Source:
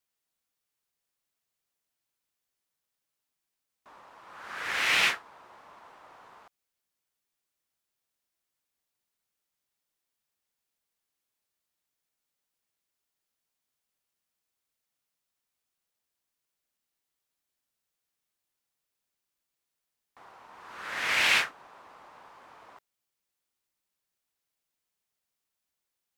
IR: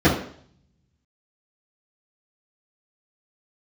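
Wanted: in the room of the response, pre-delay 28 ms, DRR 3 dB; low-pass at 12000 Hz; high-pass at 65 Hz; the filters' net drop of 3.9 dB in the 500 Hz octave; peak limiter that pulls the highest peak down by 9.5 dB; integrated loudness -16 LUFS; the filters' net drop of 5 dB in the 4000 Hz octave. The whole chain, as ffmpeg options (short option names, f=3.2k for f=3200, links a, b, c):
-filter_complex "[0:a]highpass=65,lowpass=12k,equalizer=f=500:t=o:g=-5,equalizer=f=4k:t=o:g=-7,alimiter=limit=-23dB:level=0:latency=1,asplit=2[a][b];[1:a]atrim=start_sample=2205,adelay=28[c];[b][c]afir=irnorm=-1:irlink=0,volume=-24.5dB[d];[a][d]amix=inputs=2:normalize=0,volume=16dB"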